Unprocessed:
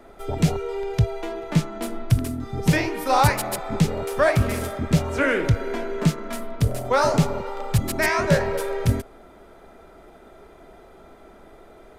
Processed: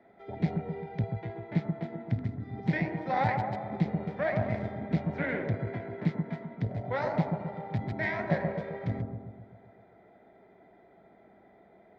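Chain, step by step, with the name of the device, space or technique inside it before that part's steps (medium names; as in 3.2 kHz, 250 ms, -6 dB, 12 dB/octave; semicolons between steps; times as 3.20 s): analogue delay pedal into a guitar amplifier (bucket-brigade echo 130 ms, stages 1024, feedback 56%, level -4 dB; valve stage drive 9 dB, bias 0.8; cabinet simulation 110–3600 Hz, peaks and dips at 110 Hz +6 dB, 190 Hz +9 dB, 730 Hz +6 dB, 1.2 kHz -9 dB, 2 kHz +9 dB, 2.8 kHz -9 dB); trim -8.5 dB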